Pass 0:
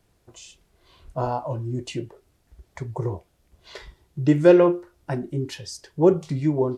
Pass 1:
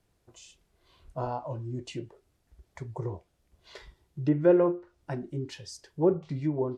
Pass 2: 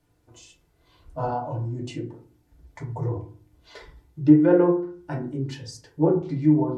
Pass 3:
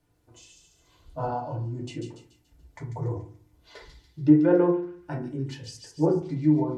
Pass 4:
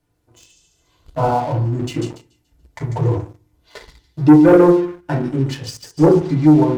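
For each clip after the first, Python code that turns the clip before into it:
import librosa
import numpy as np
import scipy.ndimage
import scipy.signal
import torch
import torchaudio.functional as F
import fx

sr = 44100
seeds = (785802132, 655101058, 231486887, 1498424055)

y1 = fx.env_lowpass_down(x, sr, base_hz=1500.0, full_db=-14.5)
y1 = y1 * librosa.db_to_amplitude(-7.0)
y2 = fx.rev_fdn(y1, sr, rt60_s=0.43, lf_ratio=1.5, hf_ratio=0.4, size_ms=20.0, drr_db=-1.5)
y3 = fx.echo_wet_highpass(y2, sr, ms=143, feedback_pct=45, hz=3600.0, wet_db=-3)
y3 = y3 * librosa.db_to_amplitude(-2.5)
y4 = fx.leveller(y3, sr, passes=2)
y4 = y4 * librosa.db_to_amplitude(5.0)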